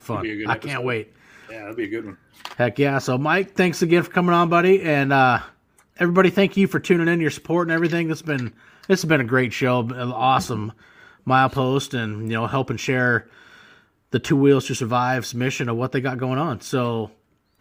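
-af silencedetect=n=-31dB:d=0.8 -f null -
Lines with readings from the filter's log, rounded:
silence_start: 13.20
silence_end: 14.13 | silence_duration: 0.93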